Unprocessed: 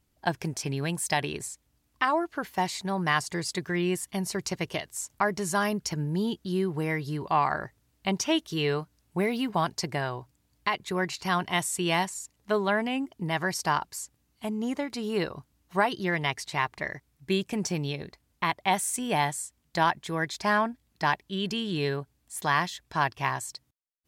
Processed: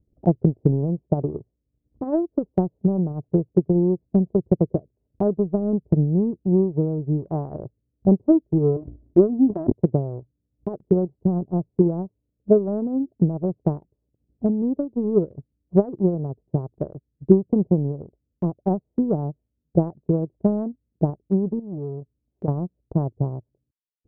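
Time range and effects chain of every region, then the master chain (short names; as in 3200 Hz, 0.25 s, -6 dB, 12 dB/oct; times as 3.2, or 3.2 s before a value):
8.76–9.72 comb 3.1 ms, depth 79% + sustainer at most 75 dB/s
21.59–22.48 compressor 2:1, threshold -34 dBFS + core saturation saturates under 660 Hz
whole clip: steep low-pass 550 Hz 36 dB/oct; dynamic EQ 110 Hz, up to +4 dB, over -44 dBFS, Q 1; transient shaper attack +10 dB, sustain -11 dB; gain +5.5 dB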